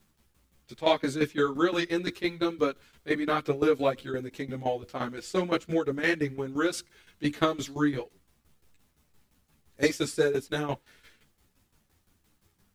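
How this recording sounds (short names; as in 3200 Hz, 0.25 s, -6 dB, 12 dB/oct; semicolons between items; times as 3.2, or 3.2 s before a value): a quantiser's noise floor 12-bit, dither none; tremolo saw down 5.8 Hz, depth 80%; a shimmering, thickened sound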